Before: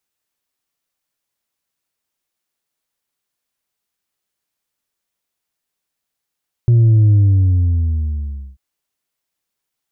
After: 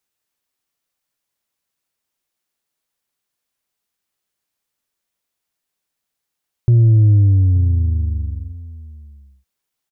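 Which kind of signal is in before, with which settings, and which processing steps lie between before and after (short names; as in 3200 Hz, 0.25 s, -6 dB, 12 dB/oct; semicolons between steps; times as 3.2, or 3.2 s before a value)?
sub drop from 120 Hz, over 1.89 s, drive 2.5 dB, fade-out 1.45 s, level -8 dB
outdoor echo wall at 150 m, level -17 dB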